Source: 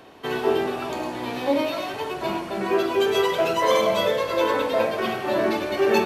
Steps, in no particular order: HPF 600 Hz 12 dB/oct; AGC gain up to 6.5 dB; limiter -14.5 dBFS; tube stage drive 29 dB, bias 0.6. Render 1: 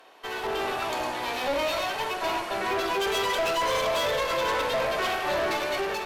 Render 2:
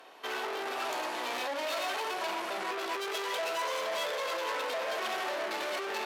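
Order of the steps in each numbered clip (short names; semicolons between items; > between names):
limiter > HPF > tube stage > AGC; AGC > limiter > tube stage > HPF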